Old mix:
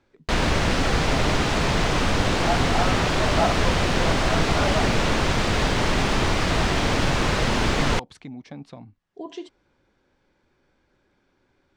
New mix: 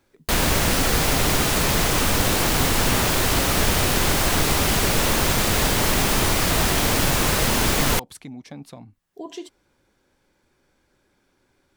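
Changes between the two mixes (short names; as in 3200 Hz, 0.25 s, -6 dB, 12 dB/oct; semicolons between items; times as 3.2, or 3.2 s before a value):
second sound: muted; master: remove air absorption 120 m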